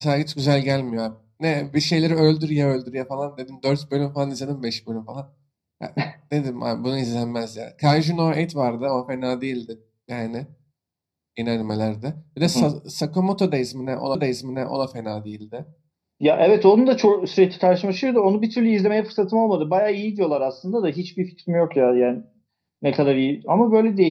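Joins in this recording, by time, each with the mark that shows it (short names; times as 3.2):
14.15 repeat of the last 0.69 s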